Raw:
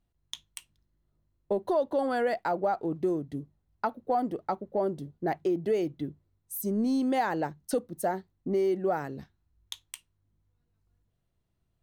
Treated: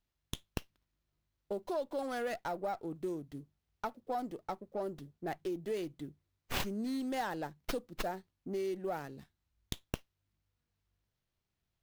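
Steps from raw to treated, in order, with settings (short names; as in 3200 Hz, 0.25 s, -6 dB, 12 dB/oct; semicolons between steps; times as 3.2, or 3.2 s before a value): pre-emphasis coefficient 0.8; running maximum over 5 samples; gain +4 dB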